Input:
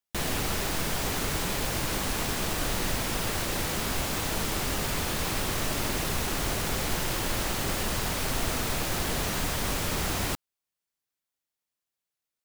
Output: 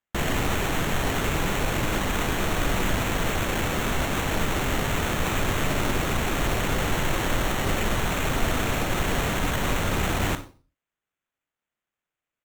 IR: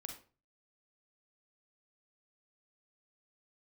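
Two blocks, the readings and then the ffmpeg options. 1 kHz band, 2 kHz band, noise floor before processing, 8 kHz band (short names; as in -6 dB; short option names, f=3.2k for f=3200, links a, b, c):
+5.0 dB, +5.5 dB, under -85 dBFS, -2.0 dB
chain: -filter_complex "[0:a]aresample=8000,aresample=44100,asplit=2[a][b];[1:a]atrim=start_sample=2205[c];[b][c]afir=irnorm=-1:irlink=0,volume=3.5dB[d];[a][d]amix=inputs=2:normalize=0,acrusher=samples=9:mix=1:aa=0.000001"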